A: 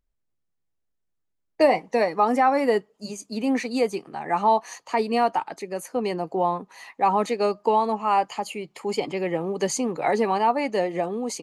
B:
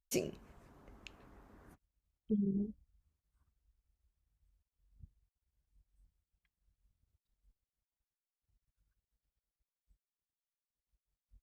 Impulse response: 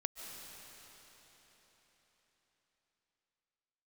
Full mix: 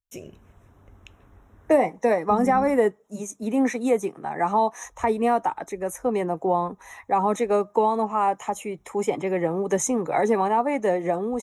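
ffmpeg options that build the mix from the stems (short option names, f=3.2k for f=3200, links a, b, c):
-filter_complex "[0:a]acrossover=split=460|3000[a][b][c];[b]acompressor=threshold=-24dB:ratio=2.5[d];[a][d][c]amix=inputs=3:normalize=0,highpass=43,equalizer=f=2.9k:t=o:w=0.53:g=-11.5,adelay=100,volume=-7dB[e];[1:a]equalizer=f=95:t=o:w=0.33:g=13.5,volume=-6dB,asplit=3[f][g][h];[f]atrim=end=2.8,asetpts=PTS-STARTPTS,afade=t=out:st=2.796:d=0.004:c=hsin[i];[g]atrim=start=2.8:end=4.84,asetpts=PTS-STARTPTS,volume=0[j];[h]atrim=start=4.84,asetpts=PTS-STARTPTS,afade=t=in:d=0.004:c=hsin[k];[i][j][k]concat=n=3:v=0:a=1[l];[e][l]amix=inputs=2:normalize=0,dynaudnorm=f=190:g=3:m=10dB,asuperstop=centerf=4600:order=8:qfactor=3.7,asubboost=boost=2:cutoff=110"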